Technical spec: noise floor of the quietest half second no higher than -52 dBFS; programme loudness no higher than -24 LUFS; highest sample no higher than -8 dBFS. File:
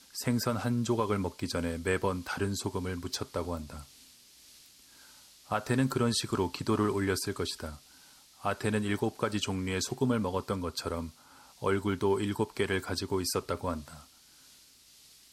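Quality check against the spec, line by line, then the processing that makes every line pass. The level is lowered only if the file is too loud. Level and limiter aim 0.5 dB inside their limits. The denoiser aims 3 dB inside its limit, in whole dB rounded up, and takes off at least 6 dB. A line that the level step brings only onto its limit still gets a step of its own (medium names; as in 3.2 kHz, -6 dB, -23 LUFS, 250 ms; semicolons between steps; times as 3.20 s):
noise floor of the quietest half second -58 dBFS: pass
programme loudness -32.0 LUFS: pass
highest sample -15.5 dBFS: pass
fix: none needed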